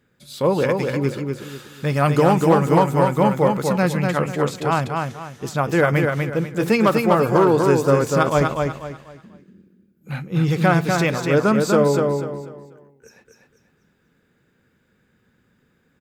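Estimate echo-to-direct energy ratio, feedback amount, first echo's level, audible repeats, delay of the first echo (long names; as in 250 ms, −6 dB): −3.5 dB, 31%, −4.0 dB, 4, 245 ms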